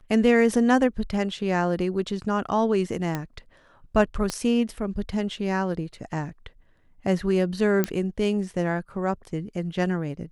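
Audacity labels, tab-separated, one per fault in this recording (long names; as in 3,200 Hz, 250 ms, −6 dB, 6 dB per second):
3.150000	3.150000	click −14 dBFS
4.300000	4.300000	click −13 dBFS
7.840000	7.840000	click −9 dBFS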